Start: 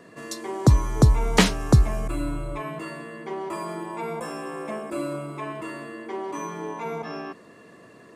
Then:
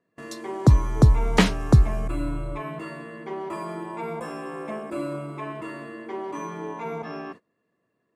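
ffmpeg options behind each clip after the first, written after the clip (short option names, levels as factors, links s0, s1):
-af "agate=range=0.0562:threshold=0.01:ratio=16:detection=peak,bass=f=250:g=2,treble=f=4000:g=-6,volume=0.891"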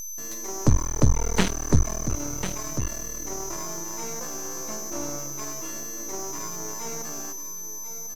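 -af "aecho=1:1:1047:0.299,aeval=exprs='val(0)+0.0355*sin(2*PI*6100*n/s)':c=same,aeval=exprs='max(val(0),0)':c=same"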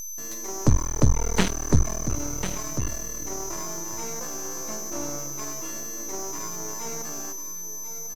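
-af "aecho=1:1:1141:0.0891"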